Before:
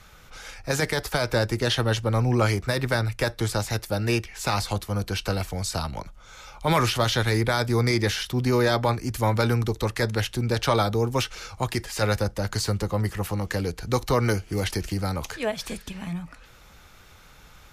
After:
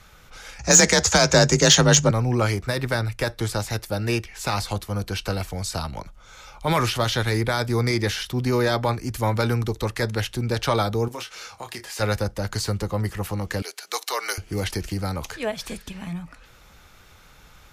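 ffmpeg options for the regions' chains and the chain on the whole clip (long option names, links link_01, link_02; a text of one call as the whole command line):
ffmpeg -i in.wav -filter_complex "[0:a]asettb=1/sr,asplit=3[link_01][link_02][link_03];[link_01]atrim=end=0.594[link_04];[link_02]atrim=start=0.59:end=2.11,asetpts=PTS-STARTPTS,afade=type=in:duration=0.004:curve=qsin,afade=type=out:start_time=1.516:duration=0.004:curve=qsin,lowpass=frequency=6700:width_type=q:width=10,afreqshift=35,acontrast=81[link_05];[link_03]atrim=start=2.106[link_06];[link_04][link_05]acrossfade=duration=0.004:curve1=hsin:curve2=qsin[link_07];[link_07][link_06]acrossfade=duration=0.004:curve1=qsin:curve2=hsin,asettb=1/sr,asplit=3[link_08][link_09][link_10];[link_08]atrim=end=11.084[link_11];[link_09]atrim=start=11.08:end=12,asetpts=PTS-STARTPTS,afade=type=in:duration=0.004:curve=qsin,afade=type=out:start_time=0.916:duration=0.004:curve=qsin,highpass=frequency=440:poles=1,acompressor=threshold=-31dB:ratio=4:attack=3.2:release=140:knee=1:detection=peak,asplit=2[link_12][link_13];[link_13]adelay=26,volume=-7dB[link_14];[link_12][link_14]amix=inputs=2:normalize=0,atrim=end_sample=40572[link_15];[link_10]atrim=start=11.996[link_16];[link_11][link_15]acrossfade=duration=0.004:curve1=hsin:curve2=qsin[link_17];[link_17][link_16]acrossfade=duration=0.004:curve1=qsin:curve2=hsin,asettb=1/sr,asplit=3[link_18][link_19][link_20];[link_18]atrim=end=13.624[link_21];[link_19]atrim=start=13.62:end=14.38,asetpts=PTS-STARTPTS,afade=type=in:duration=0.004:curve=qsin,afade=type=out:start_time=0.756:duration=0.004:curve=qsin,highpass=frequency=520:width=0.5412,highpass=frequency=520:width=1.3066,tiltshelf=frequency=1300:gain=-6.5,afreqshift=-35[link_22];[link_20]atrim=start=14.376[link_23];[link_21][link_22]acrossfade=duration=0.004:curve1=hsin:curve2=qsin[link_24];[link_24][link_23]acrossfade=duration=0.004:curve1=qsin:curve2=hsin" out.wav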